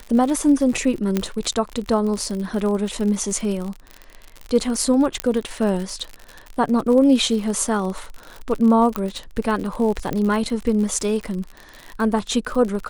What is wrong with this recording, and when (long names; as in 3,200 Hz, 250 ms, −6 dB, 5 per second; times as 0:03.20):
surface crackle 58 per second −26 dBFS
0:01.17: click −7 dBFS
0:05.20: click −6 dBFS
0:08.96: click −10 dBFS
0:10.13: click −12 dBFS